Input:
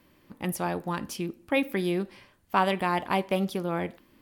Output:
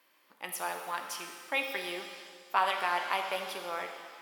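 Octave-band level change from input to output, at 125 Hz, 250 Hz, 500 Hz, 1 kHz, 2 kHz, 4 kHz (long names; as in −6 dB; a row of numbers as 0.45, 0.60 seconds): below −25 dB, −19.5 dB, −9.0 dB, −2.5 dB, −0.5 dB, +0.5 dB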